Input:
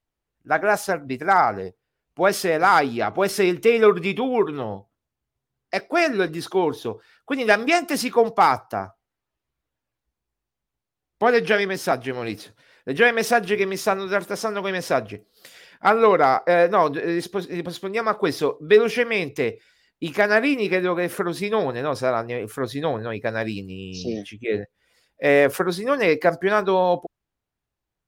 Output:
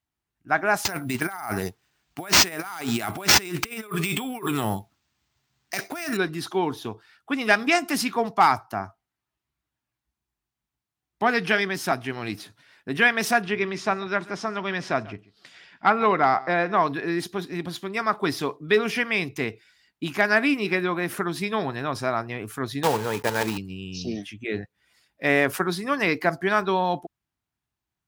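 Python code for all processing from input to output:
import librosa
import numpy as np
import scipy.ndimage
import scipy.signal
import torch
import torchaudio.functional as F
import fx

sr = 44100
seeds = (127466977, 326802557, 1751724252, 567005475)

y = fx.chain(x, sr, fx.over_compress(threshold_db=-29.0, ratio=-1.0),
    fx.high_shelf(hz=2700.0, db=10.5),
    fx.resample_bad(factor=4, down='none', up='hold'), at=(0.85, 6.17))
y = fx.chain(y, sr, fx.air_absorb(metres=100.0),
    fx.echo_single(ms=139, db=-20.5), at=(13.42, 16.88))
y = fx.chain(y, sr, fx.block_float(bits=3),
    fx.highpass(hz=50.0, slope=12),
    fx.small_body(hz=(470.0, 870.0), ring_ms=40, db=15), at=(22.83, 23.58))
y = scipy.signal.sosfilt(scipy.signal.butter(2, 59.0, 'highpass', fs=sr, output='sos'), y)
y = fx.peak_eq(y, sr, hz=500.0, db=-13.0, octaves=0.51)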